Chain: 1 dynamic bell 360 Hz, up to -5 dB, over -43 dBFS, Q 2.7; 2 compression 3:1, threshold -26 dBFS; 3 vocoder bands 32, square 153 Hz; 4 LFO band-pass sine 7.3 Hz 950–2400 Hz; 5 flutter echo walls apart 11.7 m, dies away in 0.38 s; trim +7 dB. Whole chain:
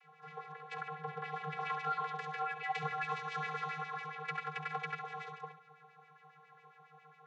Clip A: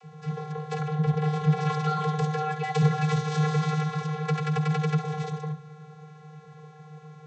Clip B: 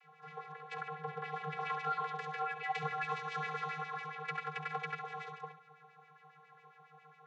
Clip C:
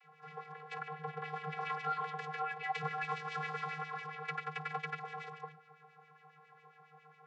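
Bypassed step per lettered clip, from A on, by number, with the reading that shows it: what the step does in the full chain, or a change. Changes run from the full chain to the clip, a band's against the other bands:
4, 125 Hz band +17.5 dB; 1, 500 Hz band +1.5 dB; 5, echo-to-direct -10.5 dB to none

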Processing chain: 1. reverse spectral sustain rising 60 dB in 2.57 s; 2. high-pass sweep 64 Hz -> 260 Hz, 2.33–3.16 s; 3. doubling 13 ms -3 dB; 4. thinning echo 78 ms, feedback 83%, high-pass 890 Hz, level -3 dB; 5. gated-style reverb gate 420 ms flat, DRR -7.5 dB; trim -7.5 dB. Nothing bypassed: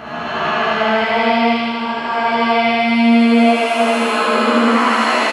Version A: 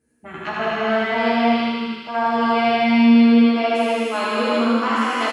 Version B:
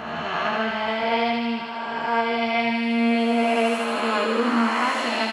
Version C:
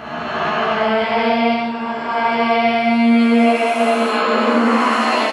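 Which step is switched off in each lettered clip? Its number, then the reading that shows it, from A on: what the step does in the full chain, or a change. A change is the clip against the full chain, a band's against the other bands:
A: 1, 250 Hz band +4.5 dB; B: 5, echo-to-direct 10.5 dB to -1.5 dB; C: 4, echo-to-direct 10.5 dB to 7.5 dB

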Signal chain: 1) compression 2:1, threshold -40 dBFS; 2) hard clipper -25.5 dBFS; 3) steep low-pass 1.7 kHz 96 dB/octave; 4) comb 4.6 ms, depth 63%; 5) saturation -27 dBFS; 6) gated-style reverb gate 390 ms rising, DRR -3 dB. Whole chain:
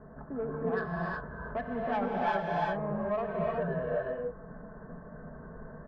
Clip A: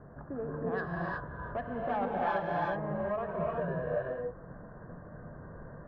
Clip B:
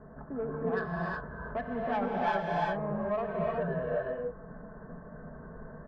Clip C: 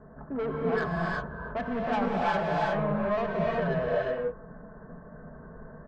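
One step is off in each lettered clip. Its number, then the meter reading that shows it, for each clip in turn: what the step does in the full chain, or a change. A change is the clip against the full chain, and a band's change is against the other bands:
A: 4, 4 kHz band -3.5 dB; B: 2, distortion -23 dB; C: 1, mean gain reduction 5.0 dB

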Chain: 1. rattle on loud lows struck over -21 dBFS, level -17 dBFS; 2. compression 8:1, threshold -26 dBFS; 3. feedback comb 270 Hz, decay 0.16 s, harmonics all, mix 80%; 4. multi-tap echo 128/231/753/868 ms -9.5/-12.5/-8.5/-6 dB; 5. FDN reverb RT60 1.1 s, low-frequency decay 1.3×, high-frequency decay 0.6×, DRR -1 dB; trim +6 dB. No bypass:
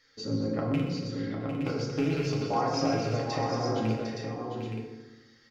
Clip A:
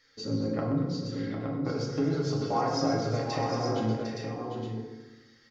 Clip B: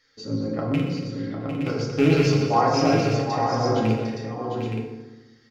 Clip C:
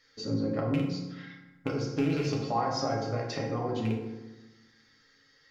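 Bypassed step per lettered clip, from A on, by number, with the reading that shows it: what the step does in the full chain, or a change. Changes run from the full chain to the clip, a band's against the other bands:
1, 2 kHz band -2.0 dB; 2, mean gain reduction 4.5 dB; 4, echo-to-direct 4.0 dB to 1.0 dB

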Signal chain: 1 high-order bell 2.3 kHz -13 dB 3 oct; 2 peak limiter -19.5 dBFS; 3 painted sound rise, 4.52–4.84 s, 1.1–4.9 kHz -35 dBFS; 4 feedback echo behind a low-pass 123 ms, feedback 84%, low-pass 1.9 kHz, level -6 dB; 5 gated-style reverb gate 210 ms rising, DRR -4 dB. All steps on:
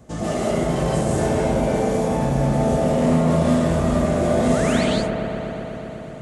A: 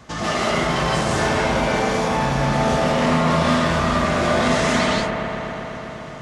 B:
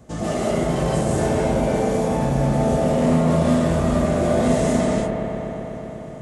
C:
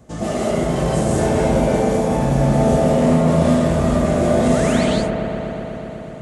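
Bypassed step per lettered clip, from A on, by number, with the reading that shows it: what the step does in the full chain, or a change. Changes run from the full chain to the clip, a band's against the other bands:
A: 1, 2 kHz band +8.5 dB; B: 3, 4 kHz band -2.5 dB; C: 2, mean gain reduction 2.0 dB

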